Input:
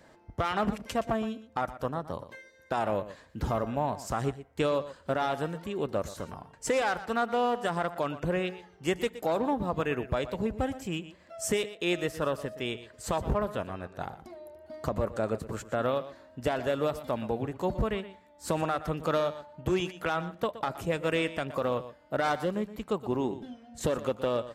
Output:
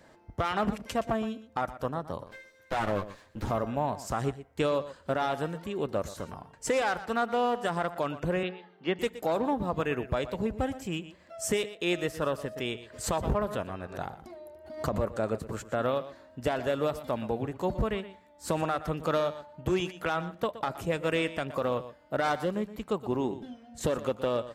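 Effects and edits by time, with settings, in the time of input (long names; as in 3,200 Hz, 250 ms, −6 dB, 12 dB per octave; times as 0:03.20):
0:02.26–0:03.51: lower of the sound and its delayed copy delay 9.6 ms
0:08.43–0:08.99: elliptic band-pass filter 180–3,900 Hz
0:12.56–0:15.05: background raised ahead of every attack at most 120 dB per second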